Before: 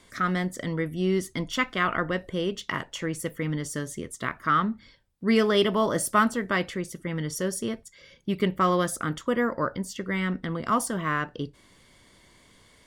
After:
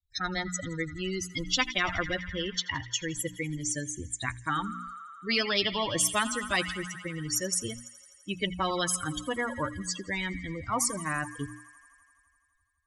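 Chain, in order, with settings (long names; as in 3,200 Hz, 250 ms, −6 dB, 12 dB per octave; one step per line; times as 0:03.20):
spectral dynamics exaggerated over time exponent 3
low-pass filter 9,500 Hz 24 dB per octave
high-shelf EQ 3,900 Hz −6 dB
mains-hum notches 60/120/180/240/300 Hz
on a send: delay with a high-pass on its return 84 ms, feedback 79%, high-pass 2,400 Hz, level −23.5 dB
on the sum: every bin compressed towards the loudest bin 4 to 1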